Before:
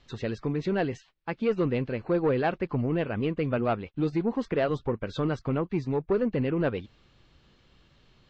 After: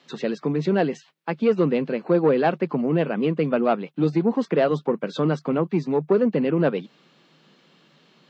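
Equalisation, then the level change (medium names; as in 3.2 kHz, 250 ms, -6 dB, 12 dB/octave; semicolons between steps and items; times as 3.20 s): Chebyshev high-pass 150 Hz, order 6; dynamic bell 2 kHz, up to -3 dB, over -47 dBFS, Q 1; +7.0 dB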